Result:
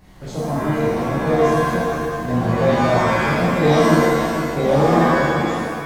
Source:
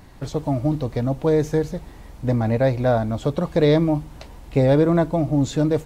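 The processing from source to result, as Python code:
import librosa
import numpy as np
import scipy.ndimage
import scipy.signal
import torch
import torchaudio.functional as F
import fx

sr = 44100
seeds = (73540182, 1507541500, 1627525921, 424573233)

y = fx.fade_out_tail(x, sr, length_s=1.1)
y = y + 10.0 ** (-8.5 / 20.0) * np.pad(y, (int(463 * sr / 1000.0), 0))[:len(y)]
y = fx.rev_shimmer(y, sr, seeds[0], rt60_s=1.1, semitones=7, shimmer_db=-2, drr_db=-8.0)
y = y * 10.0 ** (-7.5 / 20.0)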